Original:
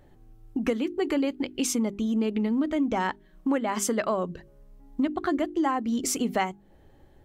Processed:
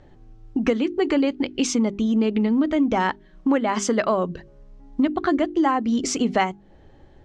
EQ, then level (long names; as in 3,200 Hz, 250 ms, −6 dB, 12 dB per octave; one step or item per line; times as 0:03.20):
low-pass filter 6,500 Hz 24 dB per octave
+5.5 dB